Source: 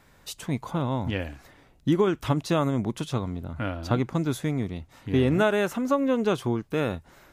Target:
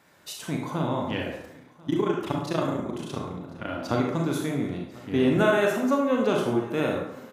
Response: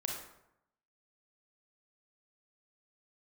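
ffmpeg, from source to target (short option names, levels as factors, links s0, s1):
-filter_complex "[0:a]highpass=160,asplit=3[s0][s1][s2];[s0]afade=t=out:st=1.29:d=0.02[s3];[s1]tremolo=f=29:d=0.947,afade=t=in:st=1.29:d=0.02,afade=t=out:st=3.67:d=0.02[s4];[s2]afade=t=in:st=3.67:d=0.02[s5];[s3][s4][s5]amix=inputs=3:normalize=0,aecho=1:1:1043:0.075[s6];[1:a]atrim=start_sample=2205[s7];[s6][s7]afir=irnorm=-1:irlink=0"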